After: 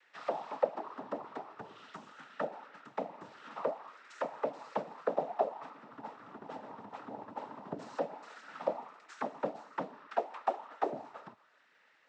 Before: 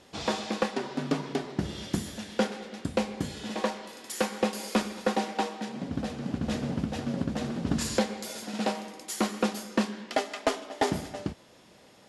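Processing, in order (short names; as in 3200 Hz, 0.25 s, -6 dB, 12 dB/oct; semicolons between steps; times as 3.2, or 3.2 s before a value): noise vocoder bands 12; auto-wah 580–1800 Hz, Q 3.4, down, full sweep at -23 dBFS; gain +1.5 dB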